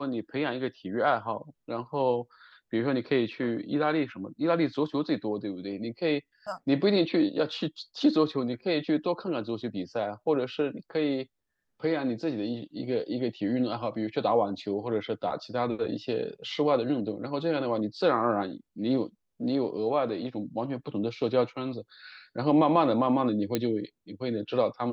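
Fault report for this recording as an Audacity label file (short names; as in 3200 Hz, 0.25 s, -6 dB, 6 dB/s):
23.550000	23.550000	pop -12 dBFS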